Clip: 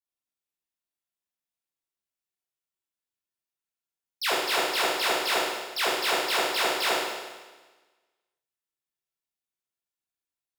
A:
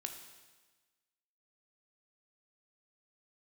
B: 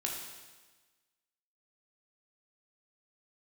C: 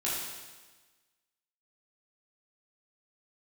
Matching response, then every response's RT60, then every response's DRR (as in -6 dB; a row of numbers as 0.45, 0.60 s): C; 1.3, 1.3, 1.3 s; 4.5, -1.5, -8.0 dB